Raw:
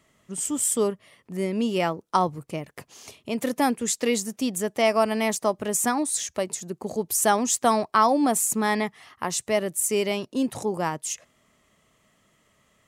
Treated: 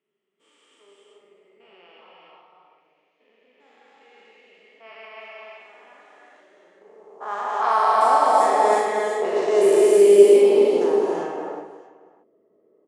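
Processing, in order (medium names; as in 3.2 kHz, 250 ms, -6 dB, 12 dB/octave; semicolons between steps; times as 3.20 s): spectrogram pixelated in time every 400 ms; steep low-pass 12 kHz 72 dB/octave; peaking EQ 410 Hz +8.5 dB 0.37 oct; high-pass sweep 2.6 kHz -> 390 Hz, 5.58–9.42 s; treble shelf 8.4 kHz -9.5 dB; level-controlled noise filter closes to 410 Hz, open at -18.5 dBFS; high-pass 100 Hz; on a send: reverse bouncing-ball echo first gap 40 ms, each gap 1.6×, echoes 5; on the sum: gated-style reverb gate 410 ms rising, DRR -0.5 dB; trim +1.5 dB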